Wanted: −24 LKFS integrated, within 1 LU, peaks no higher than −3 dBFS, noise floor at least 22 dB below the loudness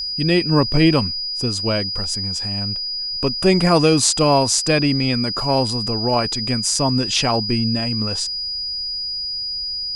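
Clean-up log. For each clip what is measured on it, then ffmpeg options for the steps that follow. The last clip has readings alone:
interfering tone 4,900 Hz; level of the tone −23 dBFS; integrated loudness −18.5 LKFS; sample peak −2.0 dBFS; target loudness −24.0 LKFS
→ -af "bandreject=frequency=4900:width=30"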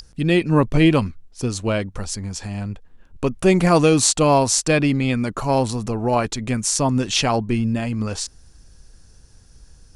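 interfering tone none found; integrated loudness −19.5 LKFS; sample peak −2.5 dBFS; target loudness −24.0 LKFS
→ -af "volume=-4.5dB"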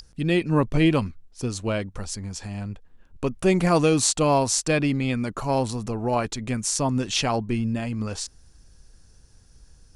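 integrated loudness −24.0 LKFS; sample peak −7.0 dBFS; background noise floor −55 dBFS

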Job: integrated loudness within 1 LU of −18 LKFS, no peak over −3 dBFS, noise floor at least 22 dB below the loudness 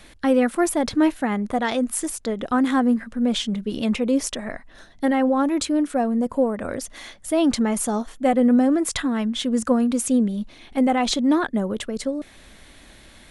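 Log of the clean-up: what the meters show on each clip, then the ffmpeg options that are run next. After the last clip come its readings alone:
integrated loudness −22.0 LKFS; sample peak −7.5 dBFS; target loudness −18.0 LKFS
→ -af "volume=4dB"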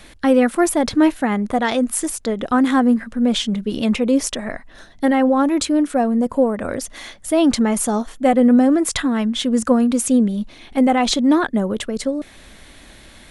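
integrated loudness −18.0 LKFS; sample peak −3.5 dBFS; background noise floor −45 dBFS

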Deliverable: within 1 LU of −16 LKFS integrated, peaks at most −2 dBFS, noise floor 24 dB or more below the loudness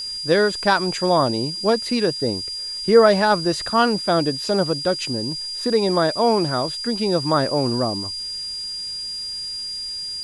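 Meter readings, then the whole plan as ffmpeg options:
interfering tone 4,800 Hz; level of the tone −27 dBFS; background noise floor −30 dBFS; target noise floor −45 dBFS; integrated loudness −20.5 LKFS; sample peak −2.5 dBFS; target loudness −16.0 LKFS
→ -af "bandreject=frequency=4800:width=30"
-af "afftdn=noise_reduction=15:noise_floor=-30"
-af "volume=4.5dB,alimiter=limit=-2dB:level=0:latency=1"

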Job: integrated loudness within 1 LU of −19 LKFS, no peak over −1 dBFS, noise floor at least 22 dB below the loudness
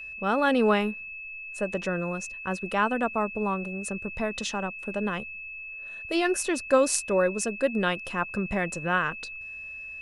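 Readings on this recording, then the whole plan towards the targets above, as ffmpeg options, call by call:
interfering tone 2,600 Hz; level of the tone −37 dBFS; integrated loudness −28.0 LKFS; sample peak −5.5 dBFS; target loudness −19.0 LKFS
→ -af "bandreject=frequency=2600:width=30"
-af "volume=9dB,alimiter=limit=-1dB:level=0:latency=1"

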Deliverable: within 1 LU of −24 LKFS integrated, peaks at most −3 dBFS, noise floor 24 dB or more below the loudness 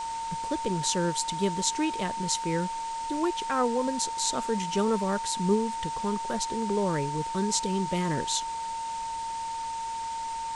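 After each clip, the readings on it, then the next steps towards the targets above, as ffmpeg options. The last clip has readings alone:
interfering tone 910 Hz; level of the tone −31 dBFS; background noise floor −34 dBFS; target noise floor −53 dBFS; integrated loudness −29.0 LKFS; sample peak −9.0 dBFS; target loudness −24.0 LKFS
→ -af "bandreject=frequency=910:width=30"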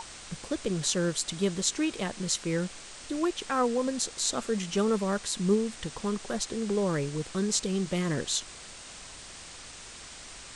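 interfering tone none found; background noise floor −46 dBFS; target noise floor −54 dBFS
→ -af "afftdn=noise_reduction=8:noise_floor=-46"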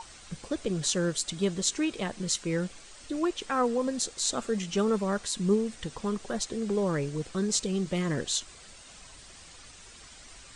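background noise floor −50 dBFS; target noise floor −54 dBFS
→ -af "afftdn=noise_reduction=6:noise_floor=-50"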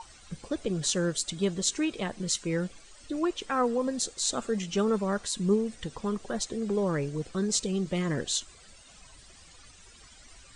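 background noise floor −54 dBFS; integrated loudness −30.0 LKFS; sample peak −9.5 dBFS; target loudness −24.0 LKFS
→ -af "volume=6dB"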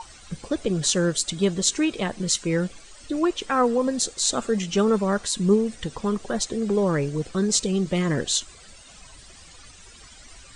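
integrated loudness −24.0 LKFS; sample peak −3.5 dBFS; background noise floor −48 dBFS

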